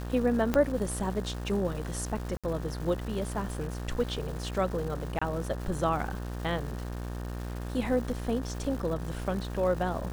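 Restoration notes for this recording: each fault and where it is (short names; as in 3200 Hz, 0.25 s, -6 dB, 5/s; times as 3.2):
buzz 60 Hz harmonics 31 -36 dBFS
crackle 590/s -39 dBFS
0.54 pop -13 dBFS
2.37–2.44 gap 66 ms
5.19–5.21 gap 25 ms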